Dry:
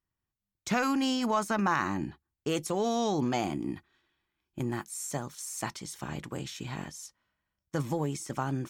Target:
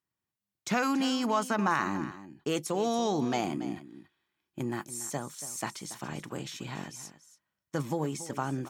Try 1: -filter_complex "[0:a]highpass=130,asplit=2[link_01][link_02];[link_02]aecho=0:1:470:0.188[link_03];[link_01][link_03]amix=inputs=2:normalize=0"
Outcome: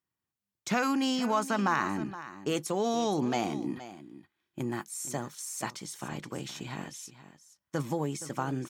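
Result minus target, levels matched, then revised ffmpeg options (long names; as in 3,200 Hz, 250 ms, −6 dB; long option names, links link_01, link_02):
echo 188 ms late
-filter_complex "[0:a]highpass=130,asplit=2[link_01][link_02];[link_02]aecho=0:1:282:0.188[link_03];[link_01][link_03]amix=inputs=2:normalize=0"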